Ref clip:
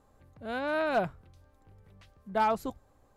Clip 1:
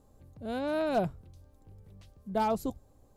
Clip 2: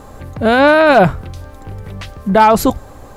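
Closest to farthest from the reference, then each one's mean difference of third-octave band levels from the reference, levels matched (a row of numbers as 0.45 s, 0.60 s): 1, 2; 3.0 dB, 4.5 dB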